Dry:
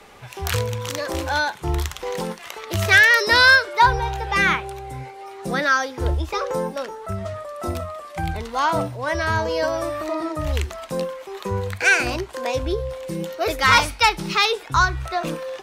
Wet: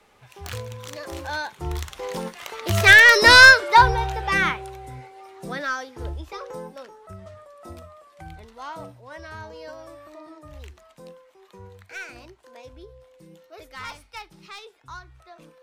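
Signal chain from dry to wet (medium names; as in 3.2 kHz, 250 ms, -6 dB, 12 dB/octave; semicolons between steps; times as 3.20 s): tracing distortion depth 0.031 ms; Doppler pass-by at 3.32 s, 6 m/s, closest 3.1 m; trim +4.5 dB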